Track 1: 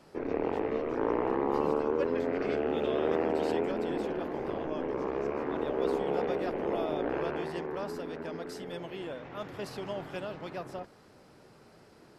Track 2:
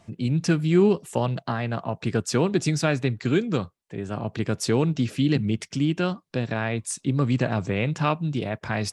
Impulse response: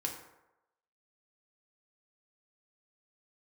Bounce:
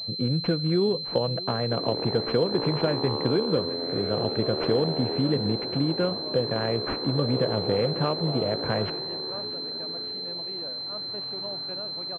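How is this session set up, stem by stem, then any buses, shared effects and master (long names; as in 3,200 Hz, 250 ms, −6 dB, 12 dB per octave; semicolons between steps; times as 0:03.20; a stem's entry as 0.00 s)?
−2.0 dB, 1.55 s, no send, no echo send, high-pass filter 87 Hz
+1.0 dB, 0.00 s, no send, echo send −20 dB, parametric band 500 Hz +12.5 dB 0.4 octaves; downward compressor 3 to 1, threshold −24 dBFS, peak gain reduction 9.5 dB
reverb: not used
echo: repeating echo 641 ms, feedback 39%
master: switching amplifier with a slow clock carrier 4,100 Hz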